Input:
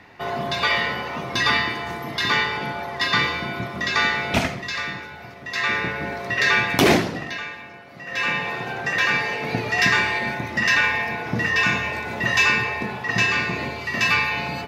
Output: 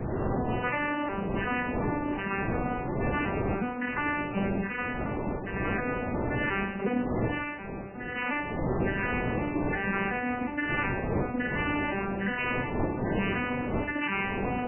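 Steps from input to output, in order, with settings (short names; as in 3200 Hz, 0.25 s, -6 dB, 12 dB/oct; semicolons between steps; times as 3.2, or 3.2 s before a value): arpeggiated vocoder major triad, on G3, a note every 0.361 s; wind noise 410 Hz -24 dBFS; reverse; compressor 6:1, threshold -26 dBFS, peak gain reduction 16.5 dB; reverse; reverb RT60 0.65 s, pre-delay 4 ms, DRR 14.5 dB; MP3 8 kbps 8000 Hz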